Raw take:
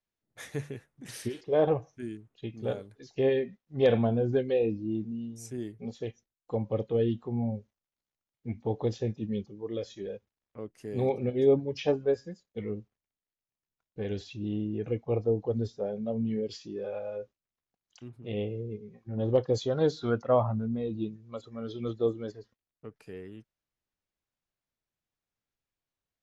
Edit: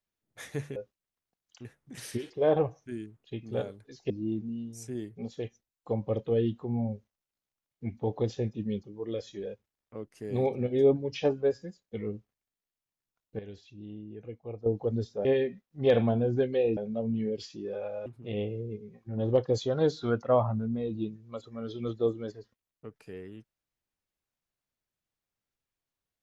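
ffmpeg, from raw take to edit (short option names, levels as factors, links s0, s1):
-filter_complex "[0:a]asplit=9[s0][s1][s2][s3][s4][s5][s6][s7][s8];[s0]atrim=end=0.762[s9];[s1]atrim=start=17.168:end=18.062[s10];[s2]atrim=start=0.758:end=3.212[s11];[s3]atrim=start=4.728:end=14.022[s12];[s4]atrim=start=14.018:end=15.292,asetpts=PTS-STARTPTS,volume=0.282[s13];[s5]atrim=start=15.288:end=15.882[s14];[s6]atrim=start=3.208:end=4.732[s15];[s7]atrim=start=15.878:end=17.172[s16];[s8]atrim=start=18.058[s17];[s9][s10]acrossfade=d=0.004:c1=hsin:c2=hsin[s18];[s18][s11]acrossfade=d=0.004:c1=hsin:c2=hsin[s19];[s19][s12]acrossfade=d=0.004:c1=hsin:c2=hsin[s20];[s20][s13]acrossfade=d=0.004:c1=hsin:c2=hsin[s21];[s21][s14]acrossfade=d=0.004:c1=hsin:c2=hsin[s22];[s22][s15]acrossfade=d=0.004:c1=hsin:c2=hsin[s23];[s23][s16]acrossfade=d=0.004:c1=hsin:c2=hsin[s24];[s24][s17]acrossfade=d=0.004:c1=hsin:c2=hsin"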